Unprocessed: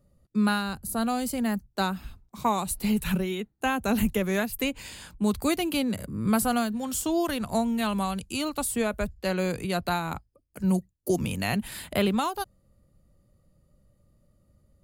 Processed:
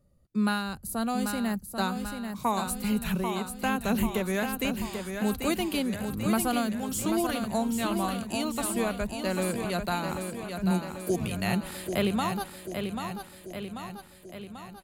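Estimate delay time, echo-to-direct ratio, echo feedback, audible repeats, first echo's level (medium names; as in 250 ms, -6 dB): 789 ms, -4.5 dB, 59%, 7, -6.5 dB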